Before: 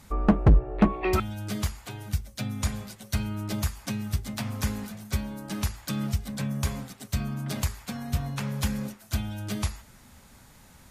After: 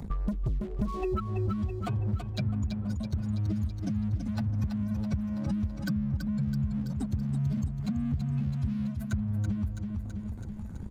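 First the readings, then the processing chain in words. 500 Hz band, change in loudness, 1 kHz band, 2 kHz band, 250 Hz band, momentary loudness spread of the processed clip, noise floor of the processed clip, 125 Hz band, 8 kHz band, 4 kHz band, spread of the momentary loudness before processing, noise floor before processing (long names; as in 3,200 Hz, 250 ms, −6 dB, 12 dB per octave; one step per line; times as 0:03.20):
−6.0 dB, −2.0 dB, −8.0 dB, −10.5 dB, −0.5 dB, 3 LU, −38 dBFS, 0.0 dB, below −15 dB, −12.0 dB, 11 LU, −53 dBFS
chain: expanding power law on the bin magnitudes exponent 2.7
leveller curve on the samples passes 2
downward compressor, threshold −32 dBFS, peak gain reduction 18 dB
repeating echo 329 ms, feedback 49%, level −8 dB
multiband upward and downward compressor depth 70%
level +3 dB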